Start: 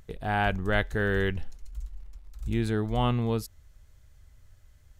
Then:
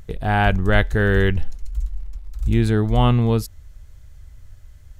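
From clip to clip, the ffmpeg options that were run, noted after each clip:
-af "lowshelf=f=140:g=6.5,volume=2.24"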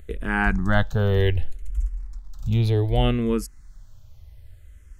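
-filter_complex "[0:a]asplit=2[s0][s1];[s1]afreqshift=-0.65[s2];[s0][s2]amix=inputs=2:normalize=1"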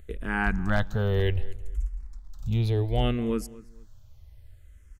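-filter_complex "[0:a]asoftclip=type=hard:threshold=0.316,asplit=2[s0][s1];[s1]adelay=228,lowpass=f=2700:p=1,volume=0.112,asplit=2[s2][s3];[s3]adelay=228,lowpass=f=2700:p=1,volume=0.28[s4];[s0][s2][s4]amix=inputs=3:normalize=0,volume=0.596"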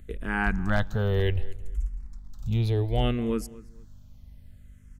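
-af "aeval=exprs='val(0)+0.00251*(sin(2*PI*50*n/s)+sin(2*PI*2*50*n/s)/2+sin(2*PI*3*50*n/s)/3+sin(2*PI*4*50*n/s)/4+sin(2*PI*5*50*n/s)/5)':c=same"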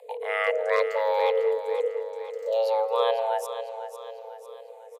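-filter_complex "[0:a]afreqshift=440,asplit=2[s0][s1];[s1]aecho=0:1:499|998|1497|1996|2495:0.282|0.135|0.0649|0.0312|0.015[s2];[s0][s2]amix=inputs=2:normalize=0,aresample=32000,aresample=44100"

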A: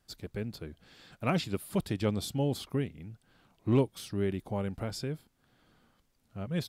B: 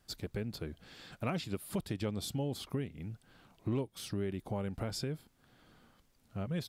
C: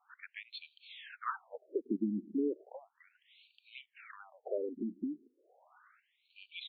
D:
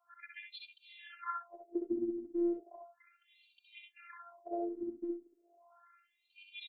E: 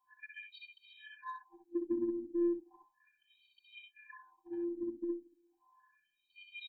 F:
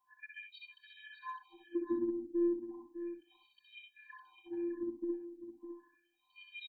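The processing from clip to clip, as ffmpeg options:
-af "acompressor=threshold=0.0126:ratio=3,volume=1.41"
-af "afftfilt=real='re*between(b*sr/1024,260*pow(3300/260,0.5+0.5*sin(2*PI*0.35*pts/sr))/1.41,260*pow(3300/260,0.5+0.5*sin(2*PI*0.35*pts/sr))*1.41)':imag='im*between(b*sr/1024,260*pow(3300/260,0.5+0.5*sin(2*PI*0.35*pts/sr))/1.41,260*pow(3300/260,0.5+0.5*sin(2*PI*0.35*pts/sr))*1.41)':win_size=1024:overlap=0.75,volume=2.24"
-filter_complex "[0:a]afftfilt=real='hypot(re,im)*cos(PI*b)':imag='0':win_size=512:overlap=0.75,asplit=2[s0][s1];[s1]aecho=0:1:64|77:0.631|0.266[s2];[s0][s2]amix=inputs=2:normalize=0,volume=1.12"
-filter_complex "[0:a]asplit=2[s0][s1];[s1]asoftclip=type=tanh:threshold=0.02,volume=0.355[s2];[s0][s2]amix=inputs=2:normalize=0,afftfilt=real='re*eq(mod(floor(b*sr/1024/370),2),0)':imag='im*eq(mod(floor(b*sr/1024/370),2),0)':win_size=1024:overlap=0.75"
-af "aecho=1:1:606:0.299"

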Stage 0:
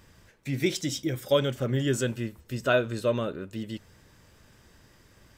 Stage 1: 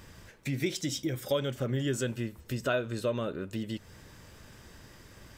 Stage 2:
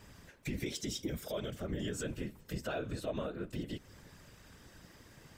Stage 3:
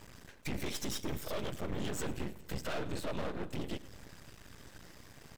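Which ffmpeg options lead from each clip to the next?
-af "acompressor=threshold=0.01:ratio=2,volume=1.78"
-filter_complex "[0:a]acrossover=split=220|1300|1900[s0][s1][s2][s3];[s2]asoftclip=type=hard:threshold=0.0112[s4];[s0][s1][s4][s3]amix=inputs=4:normalize=0,alimiter=limit=0.0631:level=0:latency=1:release=60,afftfilt=real='hypot(re,im)*cos(2*PI*random(0))':imag='hypot(re,im)*sin(2*PI*random(1))':win_size=512:overlap=0.75,volume=1.19"
-af "aeval=exprs='max(val(0),0)':c=same,aecho=1:1:106|212|318|424:0.1|0.053|0.0281|0.0149,volume=56.2,asoftclip=hard,volume=0.0178,volume=2.11"

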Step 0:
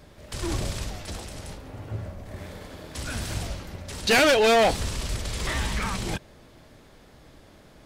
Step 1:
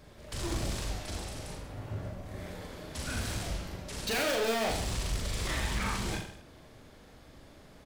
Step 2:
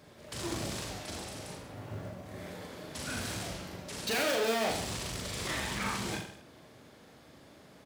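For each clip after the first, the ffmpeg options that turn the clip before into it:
-filter_complex "[0:a]volume=21.1,asoftclip=hard,volume=0.0473,asplit=2[s0][s1];[s1]aecho=0:1:40|84|132.4|185.6|244.2:0.631|0.398|0.251|0.158|0.1[s2];[s0][s2]amix=inputs=2:normalize=0,volume=0.596"
-af "highpass=120,acrusher=bits=8:mode=log:mix=0:aa=0.000001"

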